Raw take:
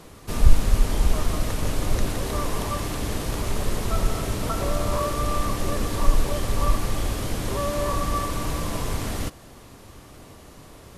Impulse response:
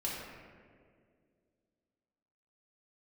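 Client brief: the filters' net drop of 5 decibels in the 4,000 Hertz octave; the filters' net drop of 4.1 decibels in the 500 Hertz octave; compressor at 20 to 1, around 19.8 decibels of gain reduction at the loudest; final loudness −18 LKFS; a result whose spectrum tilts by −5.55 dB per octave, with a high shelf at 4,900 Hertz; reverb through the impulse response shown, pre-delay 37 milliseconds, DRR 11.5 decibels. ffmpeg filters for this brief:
-filter_complex "[0:a]equalizer=frequency=500:width_type=o:gain=-5,equalizer=frequency=4000:width_type=o:gain=-3.5,highshelf=frequency=4900:gain=-6,acompressor=threshold=-26dB:ratio=20,asplit=2[link_01][link_02];[1:a]atrim=start_sample=2205,adelay=37[link_03];[link_02][link_03]afir=irnorm=-1:irlink=0,volume=-15dB[link_04];[link_01][link_04]amix=inputs=2:normalize=0,volume=16.5dB"

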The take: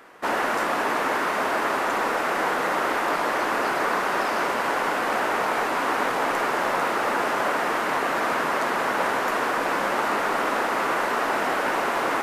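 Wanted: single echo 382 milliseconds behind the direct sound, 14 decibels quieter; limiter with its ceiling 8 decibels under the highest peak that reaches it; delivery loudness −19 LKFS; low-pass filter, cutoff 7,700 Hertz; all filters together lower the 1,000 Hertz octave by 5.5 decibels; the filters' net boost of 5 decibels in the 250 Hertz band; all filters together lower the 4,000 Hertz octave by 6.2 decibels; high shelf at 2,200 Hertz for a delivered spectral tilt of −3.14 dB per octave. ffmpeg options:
ffmpeg -i in.wav -af "lowpass=7700,equalizer=frequency=250:width_type=o:gain=7,equalizer=frequency=1000:width_type=o:gain=-6.5,highshelf=frequency=2200:gain=-3,equalizer=frequency=4000:width_type=o:gain=-5,alimiter=limit=-21.5dB:level=0:latency=1,aecho=1:1:382:0.2,volume=11dB" out.wav

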